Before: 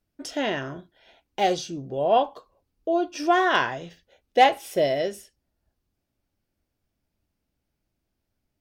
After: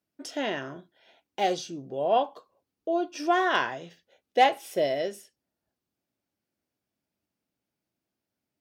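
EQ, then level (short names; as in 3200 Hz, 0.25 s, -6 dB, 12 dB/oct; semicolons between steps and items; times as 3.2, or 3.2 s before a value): HPF 160 Hz 12 dB/oct; -3.5 dB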